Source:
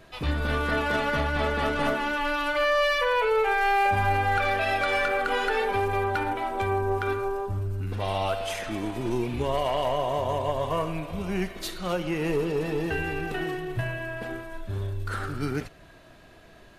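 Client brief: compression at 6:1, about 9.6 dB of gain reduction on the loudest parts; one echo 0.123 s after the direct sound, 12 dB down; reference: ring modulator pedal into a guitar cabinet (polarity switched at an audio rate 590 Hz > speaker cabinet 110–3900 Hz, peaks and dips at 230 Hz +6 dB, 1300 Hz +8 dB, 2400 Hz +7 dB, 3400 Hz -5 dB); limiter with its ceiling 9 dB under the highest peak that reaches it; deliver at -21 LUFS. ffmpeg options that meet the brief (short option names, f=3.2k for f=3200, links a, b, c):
-af "acompressor=threshold=-31dB:ratio=6,alimiter=level_in=7dB:limit=-24dB:level=0:latency=1,volume=-7dB,aecho=1:1:123:0.251,aeval=exprs='val(0)*sgn(sin(2*PI*590*n/s))':c=same,highpass=110,equalizer=f=230:t=q:w=4:g=6,equalizer=f=1.3k:t=q:w=4:g=8,equalizer=f=2.4k:t=q:w=4:g=7,equalizer=f=3.4k:t=q:w=4:g=-5,lowpass=f=3.9k:w=0.5412,lowpass=f=3.9k:w=1.3066,volume=14dB"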